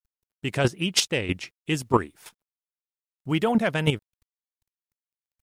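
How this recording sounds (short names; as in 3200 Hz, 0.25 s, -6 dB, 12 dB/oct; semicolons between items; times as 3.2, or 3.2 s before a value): a quantiser's noise floor 12-bit, dither none; chopped level 3.1 Hz, depth 65%, duty 10%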